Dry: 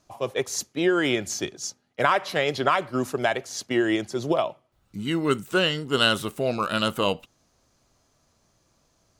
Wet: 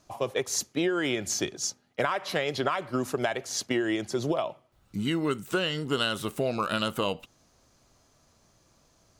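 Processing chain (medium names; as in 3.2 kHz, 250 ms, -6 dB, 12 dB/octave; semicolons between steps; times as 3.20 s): compression 5:1, threshold -27 dBFS, peak gain reduction 11 dB; trim +2.5 dB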